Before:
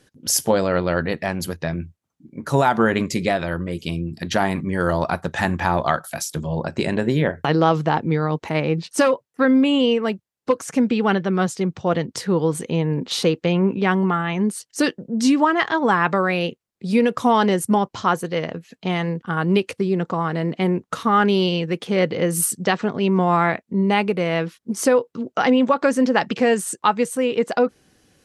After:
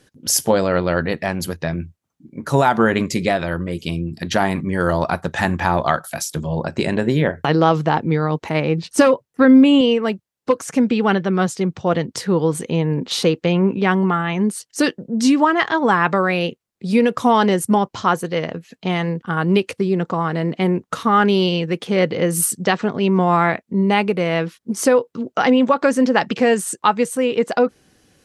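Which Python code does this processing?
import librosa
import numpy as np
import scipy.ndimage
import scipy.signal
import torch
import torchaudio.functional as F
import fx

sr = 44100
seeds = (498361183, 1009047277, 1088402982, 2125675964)

y = fx.low_shelf(x, sr, hz=250.0, db=9.0, at=(8.83, 9.81))
y = y * 10.0 ** (2.0 / 20.0)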